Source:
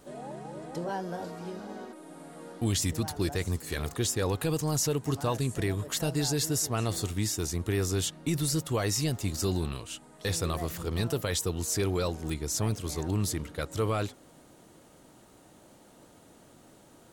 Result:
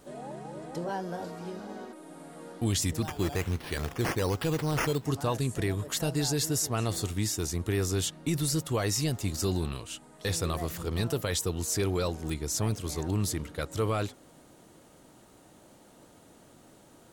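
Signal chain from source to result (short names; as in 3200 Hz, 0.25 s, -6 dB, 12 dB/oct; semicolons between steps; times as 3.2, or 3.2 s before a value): 3.02–5.05 decimation with a swept rate 9×, swing 60% 1.2 Hz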